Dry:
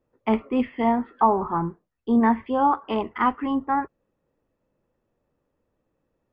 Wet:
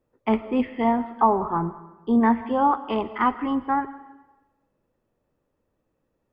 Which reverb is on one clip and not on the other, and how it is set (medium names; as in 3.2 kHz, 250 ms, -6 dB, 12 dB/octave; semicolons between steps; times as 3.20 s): algorithmic reverb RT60 1.1 s, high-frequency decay 0.95×, pre-delay 80 ms, DRR 15 dB